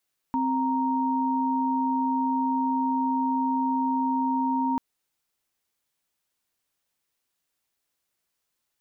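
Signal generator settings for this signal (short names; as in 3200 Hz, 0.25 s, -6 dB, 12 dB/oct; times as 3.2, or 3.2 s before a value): chord C4/A#5 sine, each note -25 dBFS 4.44 s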